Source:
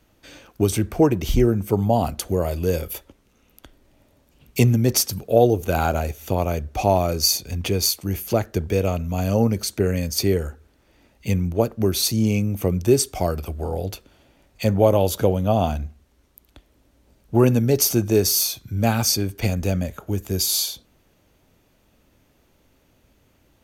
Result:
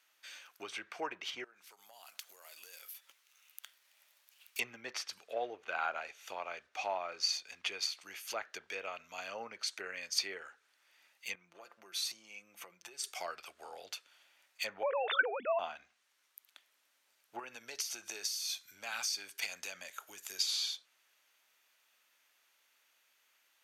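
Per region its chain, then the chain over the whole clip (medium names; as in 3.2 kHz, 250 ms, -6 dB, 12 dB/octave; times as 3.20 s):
1.44–4.59 s: median filter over 5 samples + RIAA curve recording + compression 10:1, threshold -37 dBFS
5.27–7.72 s: block-companded coder 7-bit + low-pass 3.4 kHz 6 dB/octave
11.35–13.04 s: treble shelf 4.4 kHz -8.5 dB + comb 5.8 ms, depth 48% + compression 10:1, threshold -27 dBFS
14.83–15.59 s: formants replaced by sine waves + low-pass 3 kHz + level flattener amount 70%
17.39–20.38 s: treble shelf 7 kHz +12 dB + band-stop 1.2 kHz, Q 21 + compression, threshold -20 dBFS
whole clip: low-pass that closes with the level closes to 2.3 kHz, closed at -16 dBFS; Chebyshev high-pass 1.6 kHz, order 2; trim -3.5 dB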